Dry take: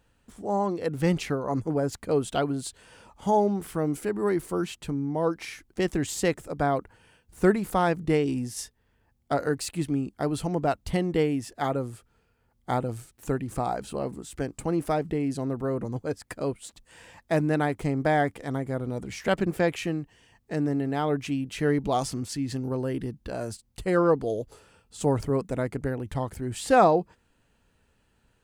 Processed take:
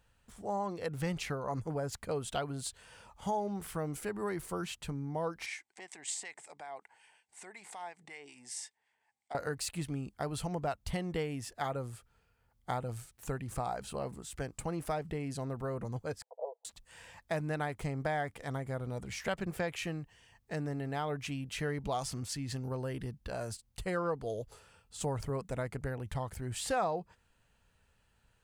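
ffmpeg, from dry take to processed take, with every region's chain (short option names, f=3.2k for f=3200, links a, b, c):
-filter_complex "[0:a]asettb=1/sr,asplit=3[a][b][c];[a]atrim=end=5.464[d];[b]atrim=start=5.46:end=9.35,asetpts=PTS-STARTPTS,afade=t=in:d=0.004:c=qsin,afade=t=out:st=3.886:d=0.004:c=qsin,acompressor=threshold=-31dB:ratio=10:attack=3.2:release=140:knee=1:detection=peak,acrossover=split=1300[e][f];[e]aeval=exprs='val(0)*(1-0.5/2+0.5/2*cos(2*PI*5.4*n/s))':c=same[g];[f]aeval=exprs='val(0)*(1-0.5/2-0.5/2*cos(2*PI*5.4*n/s))':c=same[h];[g][h]amix=inputs=2:normalize=0,highpass=480,equalizer=f=520:t=q:w=4:g=-8,equalizer=f=820:t=q:w=4:g=7,equalizer=f=1.3k:t=q:w=4:g=-8,equalizer=f=2.1k:t=q:w=4:g=8,equalizer=f=8.2k:t=q:w=4:g=8,lowpass=f=9.1k:w=0.5412,lowpass=f=9.1k:w=1.3066[i];[c]atrim=start=9.346[j];[d][i]acrossfade=d=0.004:c1=hsin:c2=qsin[k];[k][j]acrossfade=d=0.004:c1=qsin:c2=hsin,asettb=1/sr,asplit=3[l][m][n];[l]atrim=end=16.224[o];[m]atrim=start=16.22:end=16.65,asetpts=PTS-STARTPTS,afade=t=in:d=0.004:c=qsin,afade=t=out:st=0.426:d=0.004:c=qsin,asuperpass=centerf=630:order=12:qfactor=1.3,aecho=1:1:6.1:0.44,atrim=end_sample=18963[p];[n]atrim=start=16.646[q];[o][p]acrossfade=d=0.004:c1=hsin:c2=qsin[r];[r][q]acrossfade=d=0.004:c1=qsin:c2=hsin,equalizer=f=300:w=1.2:g=-9.5,acompressor=threshold=-30dB:ratio=2.5,volume=-2.5dB"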